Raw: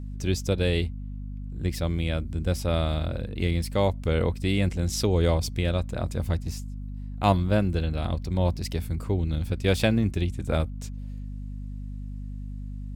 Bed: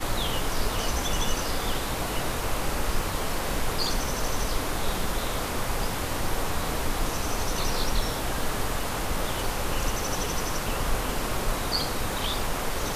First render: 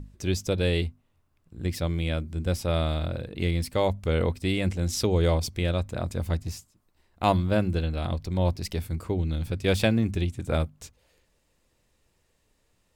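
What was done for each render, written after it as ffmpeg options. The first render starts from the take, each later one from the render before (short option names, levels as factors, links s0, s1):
-af "bandreject=f=50:t=h:w=6,bandreject=f=100:t=h:w=6,bandreject=f=150:t=h:w=6,bandreject=f=200:t=h:w=6,bandreject=f=250:t=h:w=6"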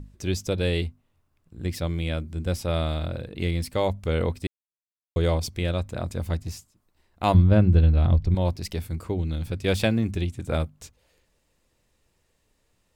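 -filter_complex "[0:a]asettb=1/sr,asplit=3[s0][s1][s2];[s0]atrim=end=7.344[s3];[s1]atrim=start=7.34:end=8.35,asetpts=PTS-STARTPTS,afade=t=in:d=0.004:c=qsin,afade=t=out:st=1.006:d=0.004:c=qsin,aemphasis=mode=reproduction:type=bsi[s4];[s2]atrim=start=8.346[s5];[s3][s4]acrossfade=d=0.004:c1=hsin:c2=qsin[s6];[s6][s5]acrossfade=d=0.004:c1=qsin:c2=hsin,asplit=3[s7][s8][s9];[s7]atrim=end=4.47,asetpts=PTS-STARTPTS,afade=t=out:st=4.466:d=0.004:c=hsin[s10];[s8]atrim=start=4.47:end=5.16,asetpts=PTS-STARTPTS,volume=0[s11];[s9]atrim=start=5.16,asetpts=PTS-STARTPTS,afade=t=in:d=0.004:c=hsin[s12];[s10][s11][s12]concat=n=3:v=0:a=1"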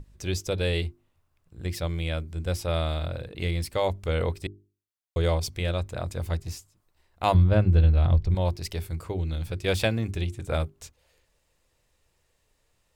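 -af "equalizer=f=230:t=o:w=1:g=-7,bandreject=f=50:t=h:w=6,bandreject=f=100:t=h:w=6,bandreject=f=150:t=h:w=6,bandreject=f=200:t=h:w=6,bandreject=f=250:t=h:w=6,bandreject=f=300:t=h:w=6,bandreject=f=350:t=h:w=6,bandreject=f=400:t=h:w=6"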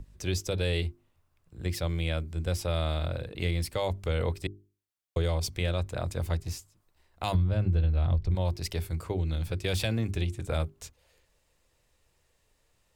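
-filter_complex "[0:a]acrossover=split=150|3000[s0][s1][s2];[s1]alimiter=limit=0.0891:level=0:latency=1:release=20[s3];[s0][s3][s2]amix=inputs=3:normalize=0,acompressor=threshold=0.0708:ratio=4"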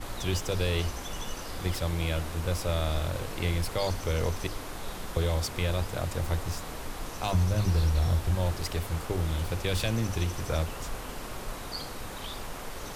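-filter_complex "[1:a]volume=0.316[s0];[0:a][s0]amix=inputs=2:normalize=0"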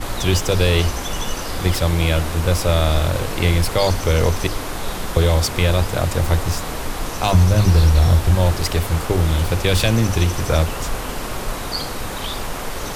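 -af "volume=3.98"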